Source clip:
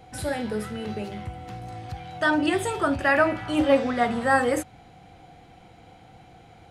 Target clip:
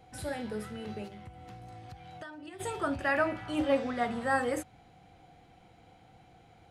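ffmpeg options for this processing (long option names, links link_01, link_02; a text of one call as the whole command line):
ffmpeg -i in.wav -filter_complex "[0:a]asplit=3[link_01][link_02][link_03];[link_01]afade=type=out:start_time=1.07:duration=0.02[link_04];[link_02]acompressor=threshold=-35dB:ratio=12,afade=type=in:start_time=1.07:duration=0.02,afade=type=out:start_time=2.59:duration=0.02[link_05];[link_03]afade=type=in:start_time=2.59:duration=0.02[link_06];[link_04][link_05][link_06]amix=inputs=3:normalize=0,volume=-8dB" out.wav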